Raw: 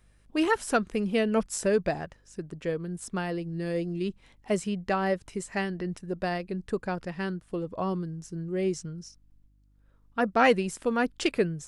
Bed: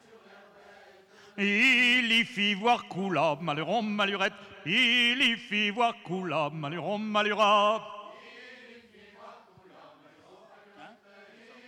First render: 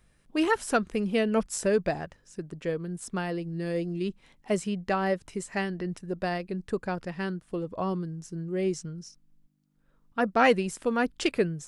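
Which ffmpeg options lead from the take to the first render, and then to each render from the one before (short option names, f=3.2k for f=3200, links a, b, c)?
-af "bandreject=f=50:t=h:w=4,bandreject=f=100:t=h:w=4"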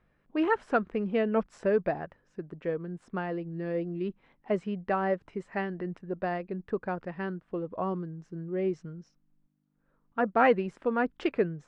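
-af "lowpass=1.8k,lowshelf=f=140:g=-9"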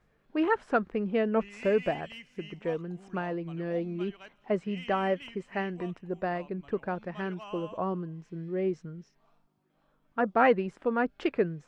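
-filter_complex "[1:a]volume=-22dB[a];[0:a][a]amix=inputs=2:normalize=0"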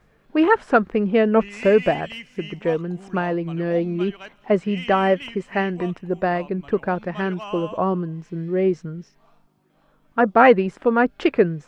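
-af "volume=10dB,alimiter=limit=-1dB:level=0:latency=1"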